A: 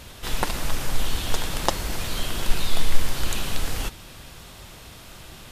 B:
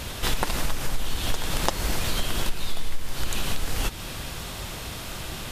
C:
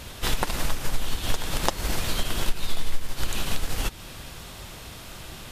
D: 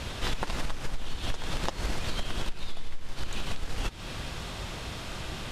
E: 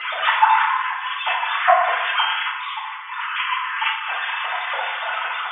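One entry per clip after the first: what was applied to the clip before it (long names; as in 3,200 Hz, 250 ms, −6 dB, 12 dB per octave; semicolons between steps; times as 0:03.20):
downward compressor 5 to 1, threshold −29 dBFS, peak gain reduction 19.5 dB; level +8.5 dB
expander for the loud parts 1.5 to 1, over −33 dBFS; level +3 dB
high-frequency loss of the air 61 metres; in parallel at −4 dB: soft clipping −18.5 dBFS, distortion −13 dB; on the sum: downward compressor 3 to 1, threshold −28 dBFS, peak gain reduction 12 dB
three sine waves on the formant tracks; band-pass filter 640–2,200 Hz; feedback delay network reverb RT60 0.95 s, low-frequency decay 0.8×, high-frequency decay 0.55×, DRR −9 dB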